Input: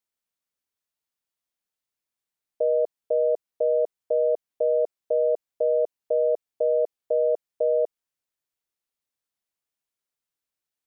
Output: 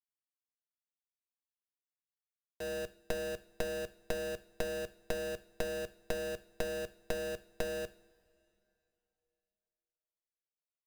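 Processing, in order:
comparator with hysteresis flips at −38 dBFS
power curve on the samples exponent 3
coupled-rooms reverb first 0.5 s, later 3 s, from −18 dB, DRR 13 dB

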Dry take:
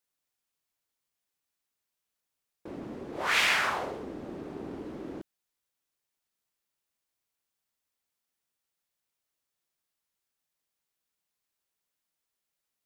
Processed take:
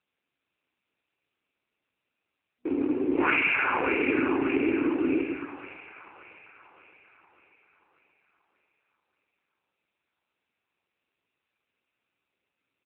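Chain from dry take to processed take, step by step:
sub-octave generator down 1 octave, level −5 dB
brick-wall band-pass 240–2,800 Hz
parametric band 1,200 Hz −11 dB 0.84 octaves
comb filter 0.8 ms, depth 82%
automatic gain control gain up to 10 dB
leveller curve on the samples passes 1
downward compressor 10 to 1, threshold −18 dBFS, peak gain reduction 8.5 dB
echo with a time of its own for lows and highs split 610 Hz, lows 108 ms, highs 584 ms, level −6 dB
on a send at −12 dB: convolution reverb RT60 0.55 s, pre-delay 78 ms
on the sum: AMR narrowband 7.4 kbit/s 8,000 Hz

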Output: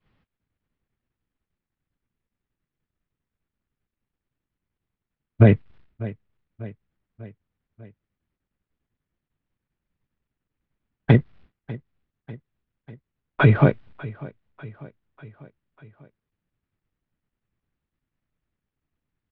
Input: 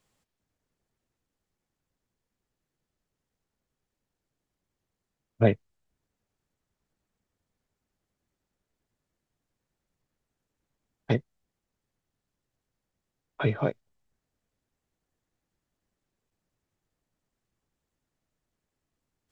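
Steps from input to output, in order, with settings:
mu-law and A-law mismatch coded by mu
downward expander −55 dBFS
parametric band 640 Hz −9 dB 2 octaves
in parallel at −0.5 dB: downward compressor, threshold −34 dBFS, peak gain reduction 14.5 dB
on the sum: Gaussian smoothing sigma 3.1 samples
on a send: repeating echo 595 ms, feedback 57%, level −20.5 dB
on the sum: boost into a limiter +15.5 dB
level −3 dB

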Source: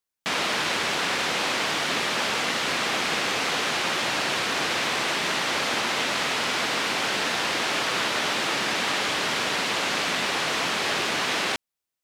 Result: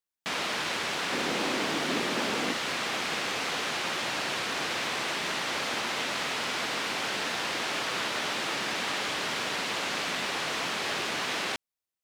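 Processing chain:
0:01.12–0:02.53: parametric band 280 Hz +10 dB 1.6 octaves
in parallel at −10 dB: floating-point word with a short mantissa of 2 bits
on the sum: level −8 dB

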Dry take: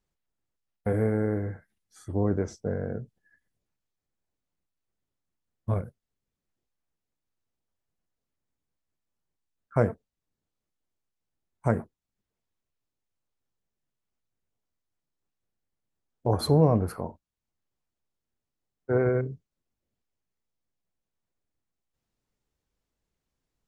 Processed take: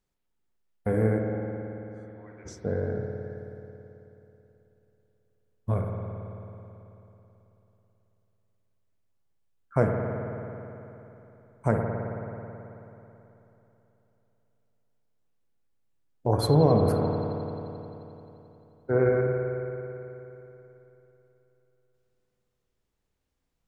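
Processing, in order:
0:01.18–0:02.45: resonant band-pass 630 Hz → 2,600 Hz, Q 4.6
spring reverb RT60 3.3 s, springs 54 ms, chirp 35 ms, DRR 1 dB

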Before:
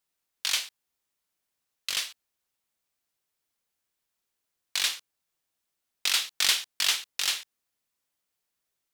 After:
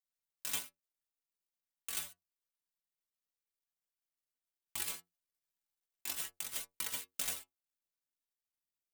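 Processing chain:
gap after every zero crossing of 0.11 ms
high-shelf EQ 5,800 Hz +11 dB
0:04.79–0:07.23: compressor whose output falls as the input rises −32 dBFS, ratio −0.5
stiff-string resonator 85 Hz, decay 0.24 s, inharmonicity 0.008
level +1 dB

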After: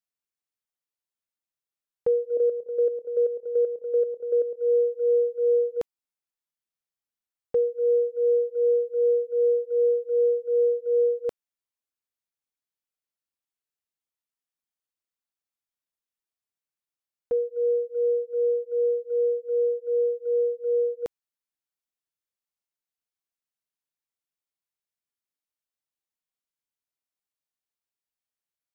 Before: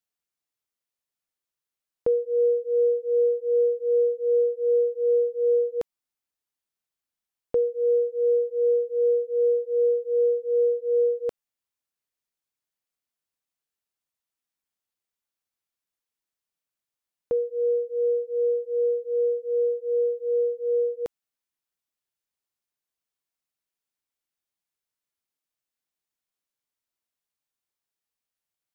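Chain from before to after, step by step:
noise gate −30 dBFS, range −6 dB
0:02.37–0:04.57: output level in coarse steps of 10 dB

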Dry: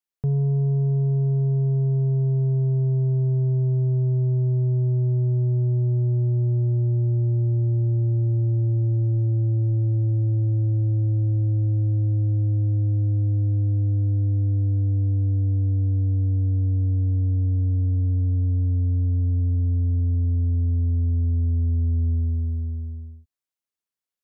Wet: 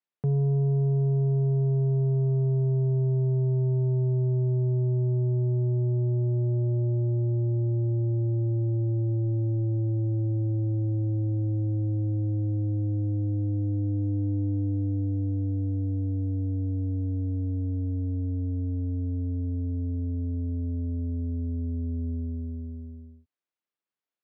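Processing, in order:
high-pass filter 160 Hz 12 dB per octave
high-frequency loss of the air 240 metres
tuned comb filter 300 Hz, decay 0.23 s, harmonics all, mix 40%
level +6 dB

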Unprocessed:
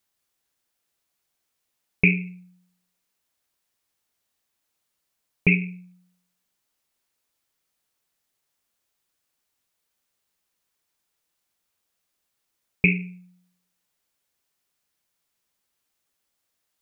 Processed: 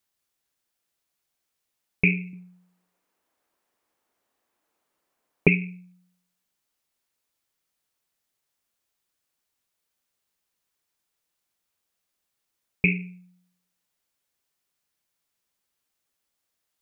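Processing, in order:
0:02.33–0:05.48: drawn EQ curve 120 Hz 0 dB, 310 Hz +12 dB, 1,000 Hz +11 dB, 4,000 Hz −1 dB
level −2.5 dB

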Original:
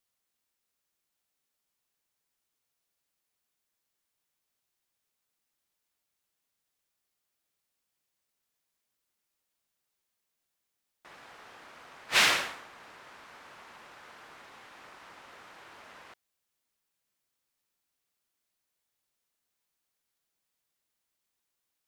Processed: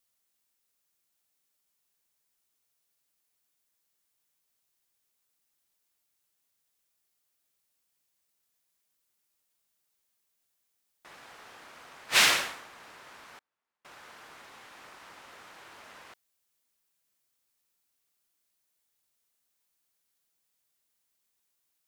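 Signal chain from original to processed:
0:13.38–0:13.85: gate with flip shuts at −45 dBFS, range −39 dB
high-shelf EQ 5,300 Hz +6.5 dB

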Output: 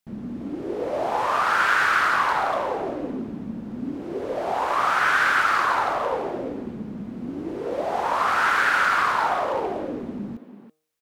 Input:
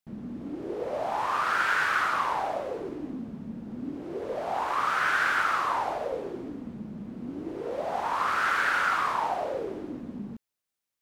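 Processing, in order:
hum removal 155.4 Hz, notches 8
far-end echo of a speakerphone 330 ms, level −6 dB
level +5 dB

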